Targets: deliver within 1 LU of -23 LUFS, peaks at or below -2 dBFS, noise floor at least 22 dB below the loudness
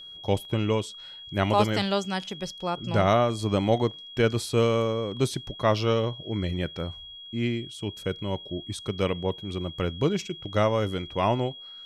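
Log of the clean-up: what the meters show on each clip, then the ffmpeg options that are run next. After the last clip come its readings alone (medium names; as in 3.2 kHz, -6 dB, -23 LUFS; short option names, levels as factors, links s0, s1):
steady tone 3.3 kHz; tone level -41 dBFS; loudness -27.0 LUFS; peak level -9.5 dBFS; loudness target -23.0 LUFS
-> -af "bandreject=f=3300:w=30"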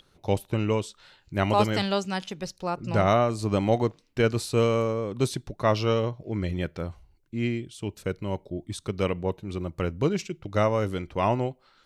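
steady tone not found; loudness -27.5 LUFS; peak level -9.5 dBFS; loudness target -23.0 LUFS
-> -af "volume=1.68"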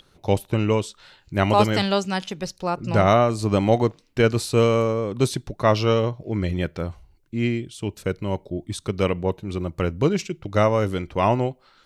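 loudness -23.0 LUFS; peak level -5.0 dBFS; noise floor -60 dBFS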